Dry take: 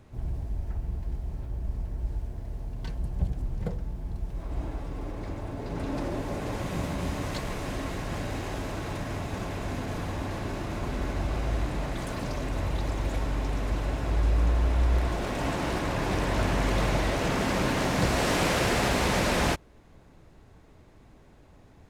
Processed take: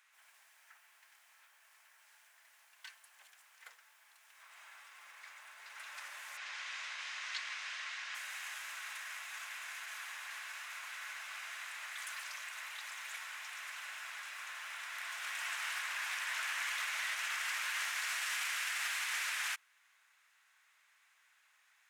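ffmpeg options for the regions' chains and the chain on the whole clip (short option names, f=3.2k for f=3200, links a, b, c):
-filter_complex "[0:a]asettb=1/sr,asplit=3[a][b][c];[a]atrim=end=6.374[d];[b]atrim=start=6.37:end=8.15,asetpts=PTS-STARTPTS,afade=t=in:d=0.004:c=qsin,afade=t=out:st=1.776:d=0.004:c=qsin,lowpass=f=5.1k:w=0.5412,lowpass=f=5.1k:w=1.3066,aemphasis=mode=production:type=50fm[e];[c]atrim=start=8.146[f];[d][e]acrossfade=d=0.004:c1=hsin:c2=qsin[g];[g][f]acrossfade=d=0.004:c1=qsin:c2=hsin,highpass=f=1.5k:w=0.5412,highpass=f=1.5k:w=1.3066,equalizer=f=4.4k:t=o:w=0.86:g=-6,alimiter=level_in=5dB:limit=-24dB:level=0:latency=1:release=56,volume=-5dB,volume=1dB"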